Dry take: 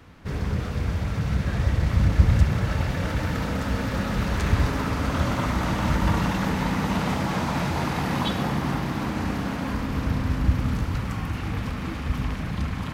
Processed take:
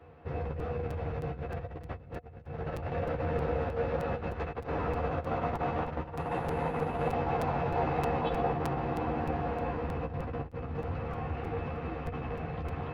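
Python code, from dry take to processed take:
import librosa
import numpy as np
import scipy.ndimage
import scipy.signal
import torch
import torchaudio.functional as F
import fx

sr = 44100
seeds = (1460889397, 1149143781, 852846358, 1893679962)

y = fx.octave_divider(x, sr, octaves=2, level_db=0.0)
y = fx.over_compress(y, sr, threshold_db=-23.0, ratio=-0.5)
y = fx.peak_eq(y, sr, hz=210.0, db=-8.5, octaves=1.2)
y = fx.resample_bad(y, sr, factor=4, down='filtered', up='zero_stuff', at=(6.16, 7.13))
y = scipy.signal.sosfilt(scipy.signal.butter(2, 97.0, 'highpass', fs=sr, output='sos'), y)
y = fx.spacing_loss(y, sr, db_at_10k=43)
y = fx.doubler(y, sr, ms=13.0, db=-3.5)
y = fx.small_body(y, sr, hz=(490.0, 720.0, 2600.0), ring_ms=70, db=15)
y = fx.buffer_crackle(y, sr, first_s=0.59, period_s=0.31, block=256, kind='repeat')
y = y * 10.0 ** (-5.5 / 20.0)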